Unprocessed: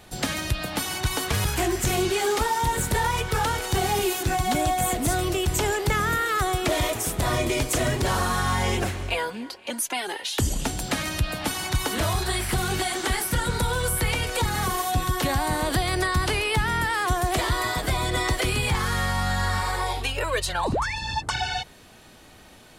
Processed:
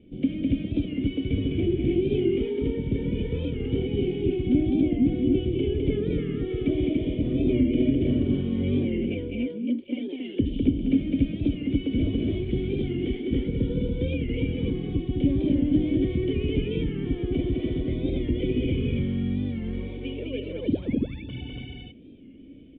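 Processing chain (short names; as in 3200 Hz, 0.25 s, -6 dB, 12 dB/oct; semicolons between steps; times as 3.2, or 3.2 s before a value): vocal tract filter i; resonant low shelf 660 Hz +8 dB, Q 3; loudspeakers at several distances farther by 71 m -3 dB, 98 m -2 dB; record warp 45 rpm, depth 100 cents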